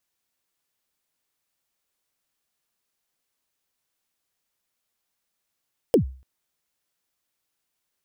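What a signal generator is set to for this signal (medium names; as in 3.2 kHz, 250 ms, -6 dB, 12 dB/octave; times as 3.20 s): kick drum length 0.29 s, from 540 Hz, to 65 Hz, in 106 ms, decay 0.40 s, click on, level -10 dB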